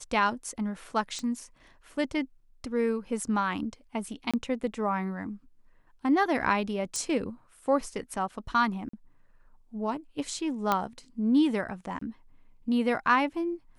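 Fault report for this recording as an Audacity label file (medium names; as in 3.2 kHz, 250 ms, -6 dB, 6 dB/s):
1.190000	1.190000	pop -23 dBFS
4.310000	4.340000	dropout 26 ms
6.960000	6.960000	pop
8.890000	8.930000	dropout 44 ms
10.720000	10.720000	pop -11 dBFS
11.990000	12.010000	dropout 24 ms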